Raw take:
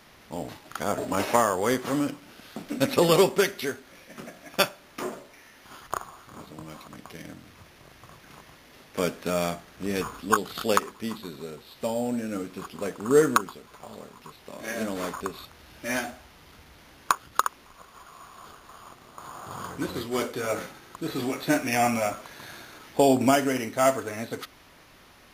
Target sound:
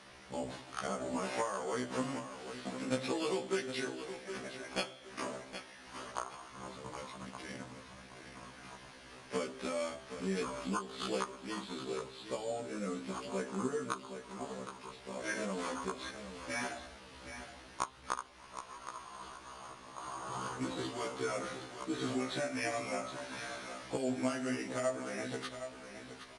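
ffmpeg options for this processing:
ffmpeg -i in.wav -filter_complex "[0:a]lowshelf=frequency=150:gain=-5,bandreject=frequency=137.1:width_type=h:width=4,bandreject=frequency=274.2:width_type=h:width=4,bandreject=frequency=411.3:width_type=h:width=4,bandreject=frequency=548.4:width_type=h:width=4,bandreject=frequency=685.5:width_type=h:width=4,bandreject=frequency=822.6:width_type=h:width=4,bandreject=frequency=959.7:width_type=h:width=4,bandreject=frequency=1096.8:width_type=h:width=4,bandreject=frequency=1233.9:width_type=h:width=4,bandreject=frequency=1371:width_type=h:width=4,bandreject=frequency=1508.1:width_type=h:width=4,bandreject=frequency=1645.2:width_type=h:width=4,bandreject=frequency=1782.3:width_type=h:width=4,bandreject=frequency=1919.4:width_type=h:width=4,bandreject=frequency=2056.5:width_type=h:width=4,bandreject=frequency=2193.6:width_type=h:width=4,bandreject=frequency=2330.7:width_type=h:width=4,bandreject=frequency=2467.8:width_type=h:width=4,bandreject=frequency=2604.9:width_type=h:width=4,bandreject=frequency=2742:width_type=h:width=4,bandreject=frequency=2879.1:width_type=h:width=4,bandreject=frequency=3016.2:width_type=h:width=4,bandreject=frequency=3153.3:width_type=h:width=4,bandreject=frequency=3290.4:width_type=h:width=4,bandreject=frequency=3427.5:width_type=h:width=4,bandreject=frequency=3564.6:width_type=h:width=4,bandreject=frequency=3701.7:width_type=h:width=4,bandreject=frequency=3838.8:width_type=h:width=4,bandreject=frequency=3975.9:width_type=h:width=4,bandreject=frequency=4113:width_type=h:width=4,bandreject=frequency=4250.1:width_type=h:width=4,bandreject=frequency=4387.2:width_type=h:width=4,acompressor=threshold=-32dB:ratio=5,asplit=2[link_01][link_02];[link_02]aecho=0:1:737|1474|2211:0.316|0.0791|0.0198[link_03];[link_01][link_03]amix=inputs=2:normalize=0,asetrate=42336,aresample=44100,aresample=22050,aresample=44100,afftfilt=real='re*1.73*eq(mod(b,3),0)':imag='im*1.73*eq(mod(b,3),0)':win_size=2048:overlap=0.75,volume=1dB" out.wav

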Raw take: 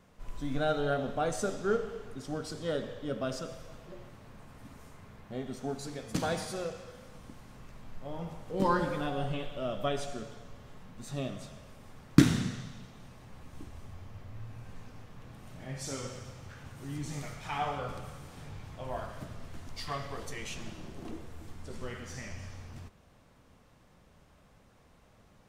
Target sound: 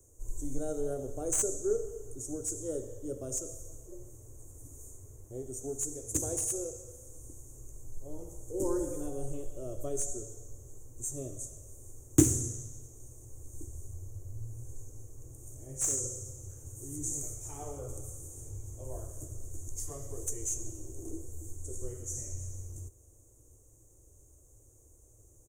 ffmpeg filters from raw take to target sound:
ffmpeg -i in.wav -filter_complex "[0:a]firequalizer=gain_entry='entry(110,0);entry(180,-27);entry(330,0);entry(740,-18);entry(1600,-28);entry(4500,-29);entry(6500,13);entry(12000,7)':delay=0.05:min_phase=1,acrossover=split=160|1700|5300[link_01][link_02][link_03][link_04];[link_04]aeval=exprs='clip(val(0),-1,0.0224)':channel_layout=same[link_05];[link_01][link_02][link_03][link_05]amix=inputs=4:normalize=0,volume=4dB" out.wav

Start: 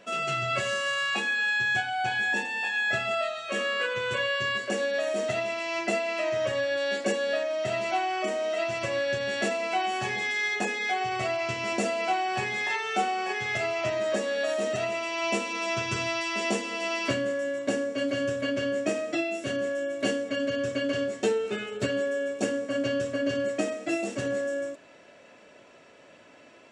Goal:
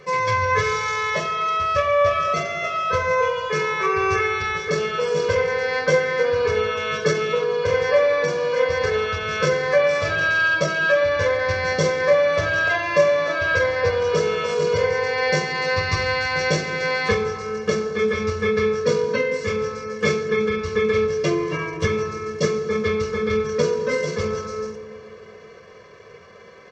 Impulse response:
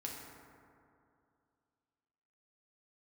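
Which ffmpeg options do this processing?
-filter_complex "[0:a]asetrate=34006,aresample=44100,atempo=1.29684,aecho=1:1:1.8:0.95,asplit=2[link_01][link_02];[1:a]atrim=start_sample=2205[link_03];[link_02][link_03]afir=irnorm=-1:irlink=0,volume=-1.5dB[link_04];[link_01][link_04]amix=inputs=2:normalize=0,volume=2dB"

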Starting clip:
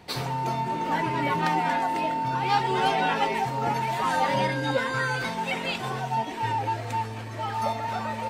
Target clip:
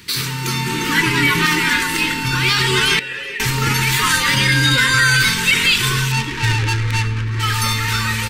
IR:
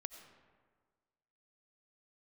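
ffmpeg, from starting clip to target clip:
-filter_complex "[0:a]asettb=1/sr,asplit=3[link_01][link_02][link_03];[link_01]atrim=end=6.124[link_04];[link_02]atrim=start=6.12:end=7.4,asetpts=PTS-STARTPTS,afade=type=in:duration=0.004:curve=qsin,afade=type=out:start_time=1.276:duration=0.004:curve=qsin,adynamicsmooth=sensitivity=4.5:basefreq=940[link_05];[link_03]atrim=start=7.396[link_06];[link_04][link_05]acrossfade=duration=0.004:curve1=hsin:curve2=qsin[link_07];[link_07][link_06]acrossfade=duration=0.004:curve1=qsin:curve2=hsin,crystalizer=i=7.5:c=0,asubboost=boost=7:cutoff=79,asplit=2[link_08][link_09];[1:a]atrim=start_sample=2205,asetrate=79380,aresample=44100[link_10];[link_09][link_10]afir=irnorm=-1:irlink=0,volume=10.5dB[link_11];[link_08][link_11]amix=inputs=2:normalize=0,alimiter=limit=-6.5dB:level=0:latency=1:release=28,asettb=1/sr,asplit=3[link_12][link_13][link_14];[link_12]atrim=end=2.994[link_15];[link_13]atrim=start=2.99:end=3.4,asetpts=PTS-STARTPTS,afade=type=in:duration=0.004:curve=qsin,afade=type=out:start_time=0.406:duration=0.004:curve=qsin,asplit=3[link_16][link_17][link_18];[link_16]bandpass=frequency=530:width_type=q:width=8,volume=0dB[link_19];[link_17]bandpass=frequency=1840:width_type=q:width=8,volume=-6dB[link_20];[link_18]bandpass=frequency=2480:width_type=q:width=8,volume=-9dB[link_21];[link_19][link_20][link_21]amix=inputs=3:normalize=0[link_22];[link_14]atrim=start=3.396[link_23];[link_15][link_22]acrossfade=duration=0.004:curve1=hsin:curve2=qsin[link_24];[link_24][link_23]acrossfade=duration=0.004:curve1=qsin:curve2=hsin,dynaudnorm=framelen=330:gausssize=3:maxgain=11.5dB,asuperstop=centerf=690:order=4:qfactor=0.79,highshelf=frequency=3600:gain=-7,aecho=1:1:378:0.0841"

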